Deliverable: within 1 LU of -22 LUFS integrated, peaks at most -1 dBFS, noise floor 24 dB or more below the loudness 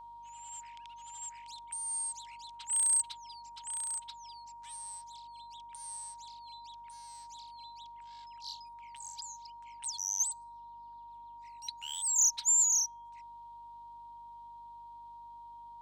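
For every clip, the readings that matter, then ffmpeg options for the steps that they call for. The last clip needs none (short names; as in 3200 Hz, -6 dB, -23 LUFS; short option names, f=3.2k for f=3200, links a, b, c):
hum 50 Hz; harmonics up to 300 Hz; hum level -67 dBFS; steady tone 940 Hz; tone level -47 dBFS; loudness -31.0 LUFS; peak -20.0 dBFS; loudness target -22.0 LUFS
-> -af "bandreject=f=50:t=h:w=4,bandreject=f=100:t=h:w=4,bandreject=f=150:t=h:w=4,bandreject=f=200:t=h:w=4,bandreject=f=250:t=h:w=4,bandreject=f=300:t=h:w=4"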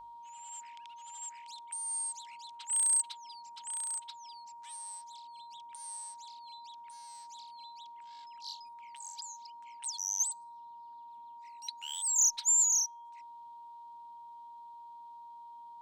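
hum none; steady tone 940 Hz; tone level -47 dBFS
-> -af "bandreject=f=940:w=30"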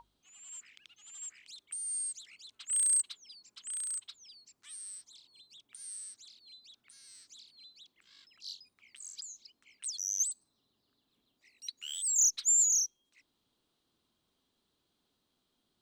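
steady tone none; loudness -30.0 LUFS; peak -20.5 dBFS; loudness target -22.0 LUFS
-> -af "volume=8dB"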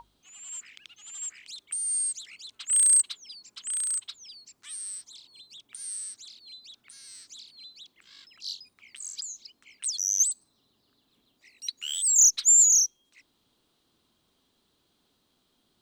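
loudness -22.5 LUFS; peak -12.5 dBFS; noise floor -72 dBFS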